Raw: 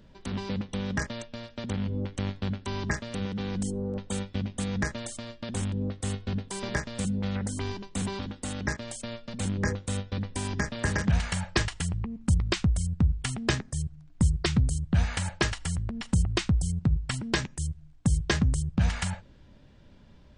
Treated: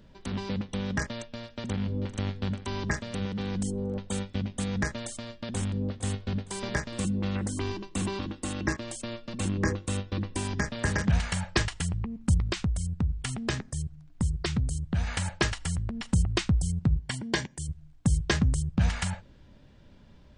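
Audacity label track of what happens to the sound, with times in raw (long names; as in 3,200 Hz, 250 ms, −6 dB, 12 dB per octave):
1.140000	2.000000	delay throw 440 ms, feedback 65%, level −13 dB
5.130000	5.690000	delay throw 460 ms, feedback 45%, level −14 dB
6.920000	10.430000	hollow resonant body resonances 330/1,100/2,700 Hz, height 13 dB, ringing for 95 ms
12.490000	15.070000	downward compressor 1.5 to 1, threshold −30 dBFS
16.990000	17.690000	notch comb filter 1,300 Hz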